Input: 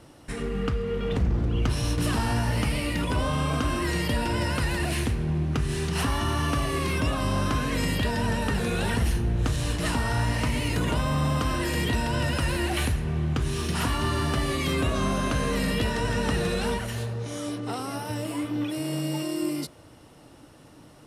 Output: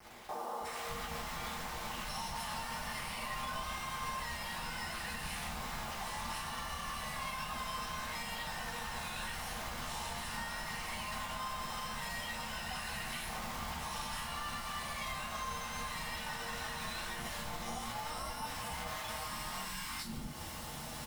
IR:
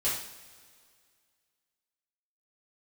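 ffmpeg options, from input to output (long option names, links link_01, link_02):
-filter_complex "[0:a]acrossover=split=500[link_01][link_02];[link_01]aeval=exprs='(mod(31.6*val(0)+1,2)-1)/31.6':channel_layout=same[link_03];[link_03][link_02]amix=inputs=2:normalize=0,equalizer=frequency=100:width_type=o:width=0.67:gain=-11,equalizer=frequency=400:width_type=o:width=0.67:gain=-11,equalizer=frequency=1000:width_type=o:width=0.67:gain=5,acrossover=split=310|1000[link_04][link_05][link_06];[link_06]adelay=360[link_07];[link_04]adelay=600[link_08];[link_08][link_05][link_07]amix=inputs=3:normalize=0,acrossover=split=210[link_09][link_10];[link_10]acompressor=threshold=-36dB:ratio=4[link_11];[link_09][link_11]amix=inputs=2:normalize=0,alimiter=level_in=6dB:limit=-24dB:level=0:latency=1:release=161,volume=-6dB,acrusher=bits=8:mix=0:aa=0.000001,acompressor=threshold=-49dB:ratio=6[link_12];[1:a]atrim=start_sample=2205,asetrate=79380,aresample=44100[link_13];[link_12][link_13]afir=irnorm=-1:irlink=0,volume=8dB"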